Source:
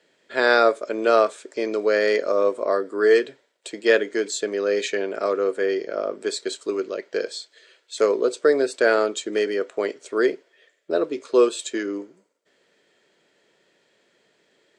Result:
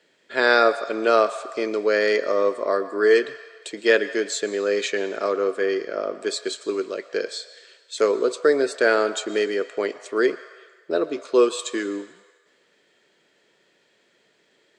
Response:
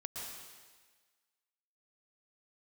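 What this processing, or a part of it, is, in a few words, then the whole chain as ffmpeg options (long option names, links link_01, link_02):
filtered reverb send: -filter_complex "[0:a]asplit=2[link_01][link_02];[link_02]highpass=frequency=590:width=0.5412,highpass=frequency=590:width=1.3066,lowpass=7300[link_03];[1:a]atrim=start_sample=2205[link_04];[link_03][link_04]afir=irnorm=-1:irlink=0,volume=-10dB[link_05];[link_01][link_05]amix=inputs=2:normalize=0"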